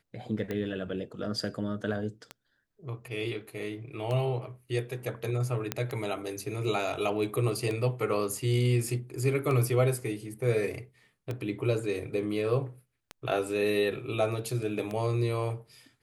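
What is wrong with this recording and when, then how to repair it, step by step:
scratch tick 33 1/3 rpm −21 dBFS
0:05.72: click −12 dBFS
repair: click removal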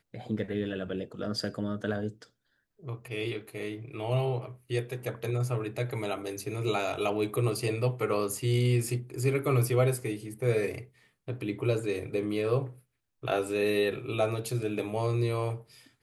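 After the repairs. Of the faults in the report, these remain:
none of them is left

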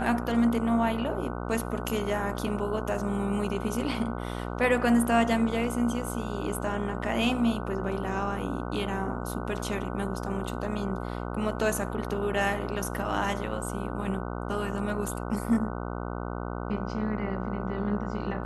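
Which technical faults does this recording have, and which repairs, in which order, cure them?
mains buzz 60 Hz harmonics 25 −34 dBFS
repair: hum removal 60 Hz, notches 25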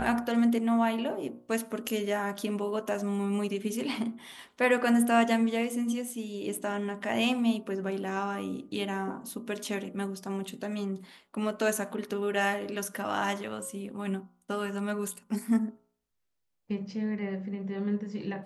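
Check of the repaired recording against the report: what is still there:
none of them is left

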